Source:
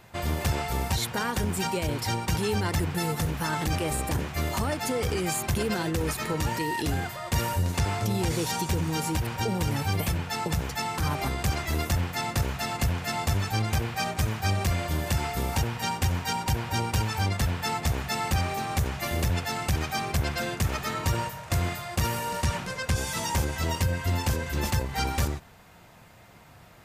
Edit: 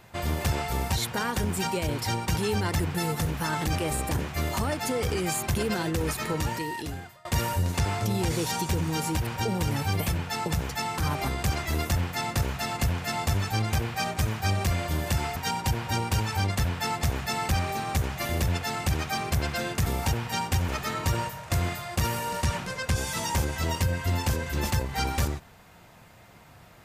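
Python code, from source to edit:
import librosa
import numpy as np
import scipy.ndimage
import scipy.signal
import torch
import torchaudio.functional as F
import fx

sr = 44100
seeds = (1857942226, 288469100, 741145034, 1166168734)

y = fx.edit(x, sr, fx.fade_out_to(start_s=6.36, length_s=0.89, floor_db=-23.5),
    fx.move(start_s=15.36, length_s=0.82, to_s=20.68), tone=tone)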